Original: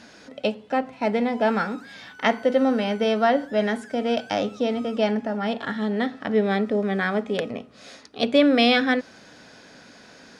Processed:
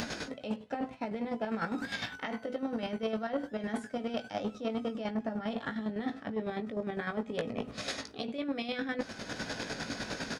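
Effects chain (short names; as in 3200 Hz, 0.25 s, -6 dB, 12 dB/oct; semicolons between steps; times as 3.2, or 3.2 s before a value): low shelf 110 Hz +8 dB; in parallel at +0.5 dB: upward compressor, threshold -25 dBFS; on the sum: limiter -8.5 dBFS, peak gain reduction 10 dB; reverse; compressor 10:1, threshold -29 dBFS, peak gain reduction 16.5 dB; reverse; chopper 9.9 Hz, depth 60%, duty 35%; doubler 18 ms -8 dB; core saturation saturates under 500 Hz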